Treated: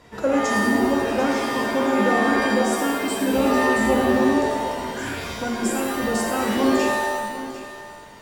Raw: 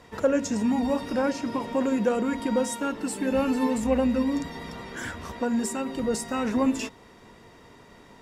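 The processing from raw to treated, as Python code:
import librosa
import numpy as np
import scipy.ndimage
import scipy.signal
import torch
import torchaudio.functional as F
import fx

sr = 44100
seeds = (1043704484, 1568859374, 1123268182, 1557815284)

y = x + 10.0 ** (-14.5 / 20.0) * np.pad(x, (int(749 * sr / 1000.0), 0))[:len(x)]
y = fx.rev_shimmer(y, sr, seeds[0], rt60_s=1.1, semitones=7, shimmer_db=-2, drr_db=0.0)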